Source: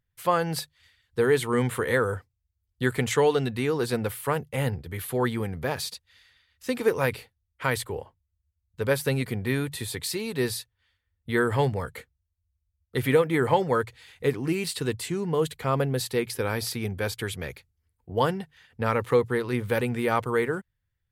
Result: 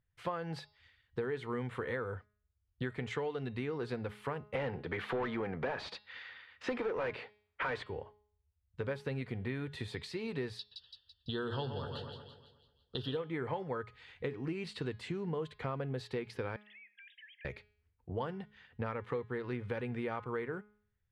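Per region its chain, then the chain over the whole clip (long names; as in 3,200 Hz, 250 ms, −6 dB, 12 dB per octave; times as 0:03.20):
0:04.55–0:07.86: high-pass filter 98 Hz + parametric band 14,000 Hz −6 dB 0.97 octaves + mid-hump overdrive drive 26 dB, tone 1,500 Hz, clips at −8.5 dBFS
0:10.59–0:13.17: Butterworth band-reject 2,200 Hz, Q 1.7 + flat-topped bell 3,800 Hz +15 dB 1.2 octaves + echo with a time of its own for lows and highs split 2,800 Hz, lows 122 ms, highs 167 ms, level −10 dB
0:16.56–0:17.45: three sine waves on the formant tracks + linear-phase brick-wall high-pass 1,600 Hz + downward compressor 12 to 1, threshold −49 dBFS
whole clip: downward compressor 6 to 1, threshold −32 dBFS; low-pass filter 3,100 Hz 12 dB per octave; hum removal 209.2 Hz, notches 26; level −2.5 dB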